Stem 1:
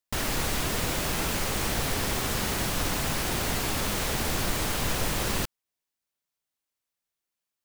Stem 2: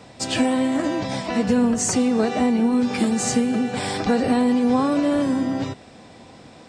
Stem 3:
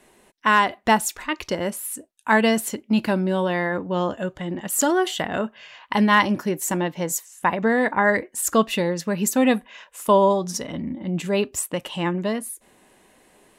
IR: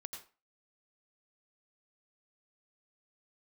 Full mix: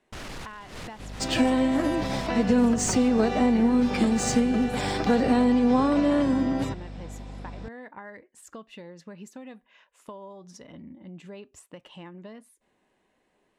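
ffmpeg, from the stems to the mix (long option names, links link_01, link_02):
-filter_complex "[0:a]asoftclip=type=tanh:threshold=-30.5dB,volume=-3dB[link_01];[1:a]aeval=exprs='val(0)+0.0158*(sin(2*PI*50*n/s)+sin(2*PI*2*50*n/s)/2+sin(2*PI*3*50*n/s)/3+sin(2*PI*4*50*n/s)/4+sin(2*PI*5*50*n/s)/5)':channel_layout=same,adelay=1000,volume=-2dB[link_02];[2:a]acompressor=threshold=-25dB:ratio=8,volume=-14dB,asplit=2[link_03][link_04];[link_04]apad=whole_len=337267[link_05];[link_01][link_05]sidechaincompress=threshold=-53dB:ratio=8:attack=7.1:release=120[link_06];[link_06][link_02][link_03]amix=inputs=3:normalize=0,adynamicsmooth=sensitivity=3.5:basefreq=6100"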